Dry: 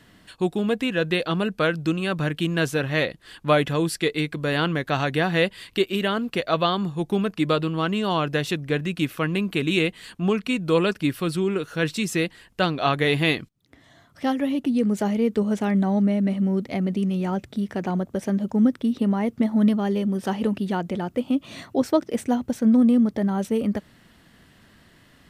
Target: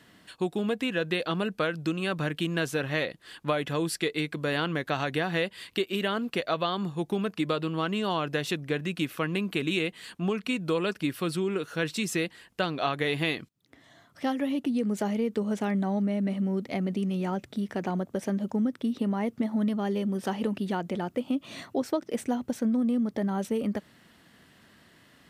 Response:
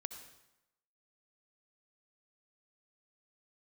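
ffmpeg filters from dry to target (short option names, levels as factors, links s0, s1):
-af "highpass=f=160:p=1,acompressor=threshold=0.0794:ratio=4,volume=0.794"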